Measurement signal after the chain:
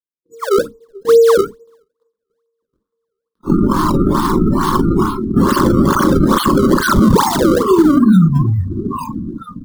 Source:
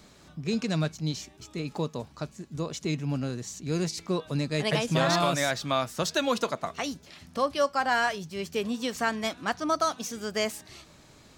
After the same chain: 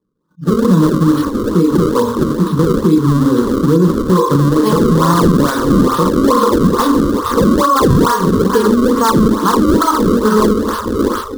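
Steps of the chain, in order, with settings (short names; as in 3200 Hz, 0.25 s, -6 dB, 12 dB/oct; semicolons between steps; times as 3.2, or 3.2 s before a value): thin delay 0.625 s, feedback 52%, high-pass 2200 Hz, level -4 dB; two-slope reverb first 0.53 s, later 1.5 s, DRR -1.5 dB; compressor 3:1, threshold -33 dBFS; bell 900 Hz +12.5 dB 0.54 oct; AGC gain up to 6.5 dB; gate -45 dBFS, range -12 dB; notches 50/100/150/200/250/300/350/400/450 Hz; decimation with a swept rate 29×, swing 160% 2.3 Hz; spectral noise reduction 26 dB; EQ curve 120 Hz 0 dB, 210 Hz +10 dB, 500 Hz +6 dB, 720 Hz -18 dB, 1100 Hz +9 dB, 2400 Hz -19 dB, 3500 Hz -4 dB; maximiser +13 dB; attack slew limiter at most 530 dB/s; gain -1 dB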